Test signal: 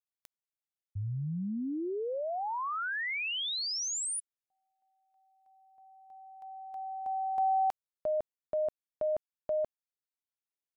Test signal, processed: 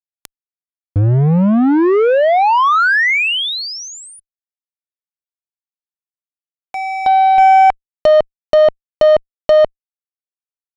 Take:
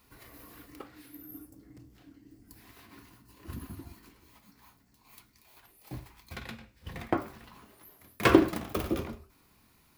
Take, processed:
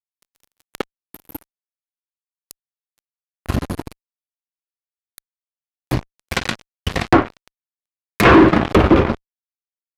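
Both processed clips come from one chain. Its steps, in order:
fuzz pedal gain 32 dB, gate −41 dBFS
treble cut that deepens with the level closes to 2,300 Hz, closed at −17 dBFS
level +7.5 dB

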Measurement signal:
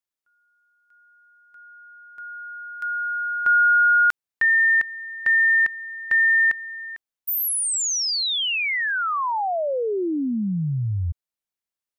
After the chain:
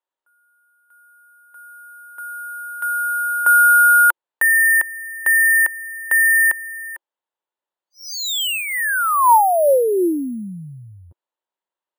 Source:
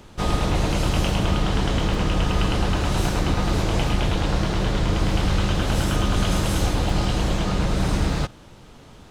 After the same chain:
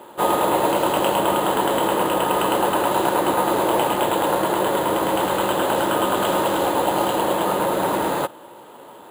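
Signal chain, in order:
loudspeaker in its box 350–3,700 Hz, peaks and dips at 350 Hz +6 dB, 550 Hz +7 dB, 930 Hz +10 dB, 2,300 Hz −7 dB
bad sample-rate conversion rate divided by 4×, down filtered, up hold
level +4.5 dB

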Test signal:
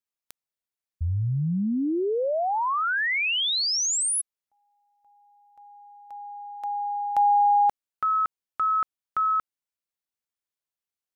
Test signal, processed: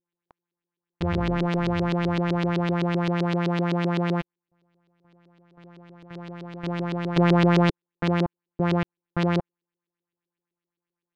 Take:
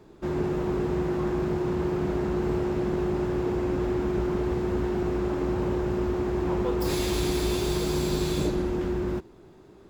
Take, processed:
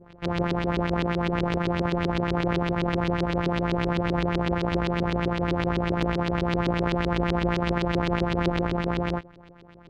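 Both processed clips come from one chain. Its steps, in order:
samples sorted by size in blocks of 256 samples
auto-filter low-pass saw up 7.8 Hz 330–4,300 Hz

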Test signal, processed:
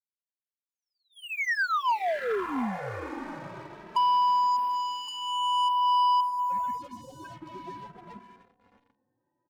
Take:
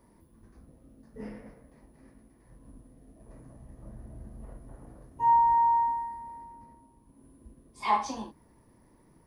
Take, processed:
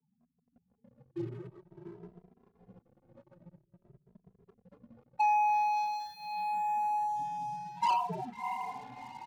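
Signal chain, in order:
loose part that buzzes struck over −37 dBFS, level −35 dBFS
spectral peaks only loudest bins 8
downward compressor 10 to 1, threshold −39 dBFS
tilt shelving filter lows −4.5 dB, about 1,300 Hz
single-sideband voice off tune −92 Hz 290–2,100 Hz
dynamic equaliser 960 Hz, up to +6 dB, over −56 dBFS, Q 5.8
feedback delay with all-pass diffusion 676 ms, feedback 42%, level −9.5 dB
leveller curve on the samples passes 3
barber-pole flanger 2.6 ms +0.5 Hz
level +6.5 dB

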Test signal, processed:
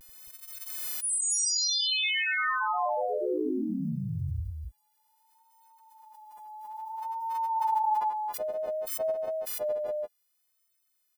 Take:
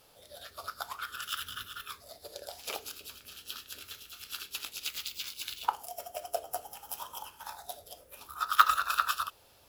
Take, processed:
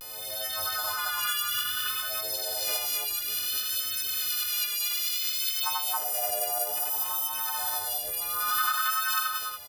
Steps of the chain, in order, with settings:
every partial snapped to a pitch grid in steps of 3 semitones
notch filter 6,600 Hz, Q 6
dynamic equaliser 110 Hz, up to −6 dB, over −53 dBFS, Q 0.73
downward compressor 6 to 1, threshold −35 dBFS
pitch vibrato 0.59 Hz 54 cents
loudspeakers that aren't time-aligned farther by 30 metres 0 dB, 94 metres 0 dB
background raised ahead of every attack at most 24 dB per second
level +4 dB

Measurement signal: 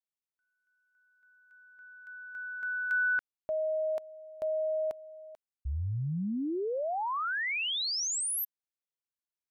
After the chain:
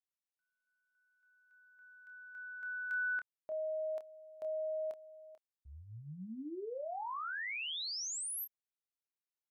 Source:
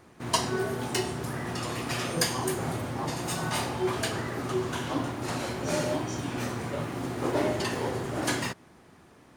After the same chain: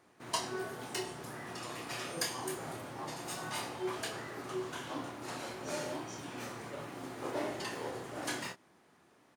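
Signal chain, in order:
high-pass filter 300 Hz 6 dB per octave
double-tracking delay 27 ms −8 dB
level −8.5 dB

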